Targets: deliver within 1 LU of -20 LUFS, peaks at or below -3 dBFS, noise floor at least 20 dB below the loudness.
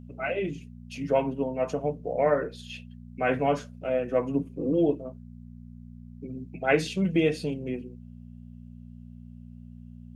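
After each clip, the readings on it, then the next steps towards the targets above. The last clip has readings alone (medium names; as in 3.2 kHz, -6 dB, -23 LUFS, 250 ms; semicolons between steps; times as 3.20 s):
hum 60 Hz; highest harmonic 240 Hz; hum level -43 dBFS; loudness -28.0 LUFS; peak level -9.0 dBFS; loudness target -20.0 LUFS
-> de-hum 60 Hz, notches 4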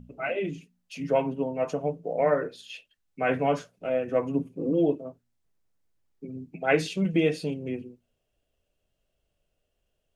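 hum not found; loudness -28.0 LUFS; peak level -9.0 dBFS; loudness target -20.0 LUFS
-> trim +8 dB; peak limiter -3 dBFS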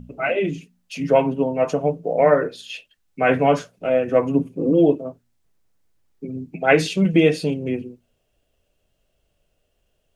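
loudness -20.0 LUFS; peak level -3.0 dBFS; noise floor -70 dBFS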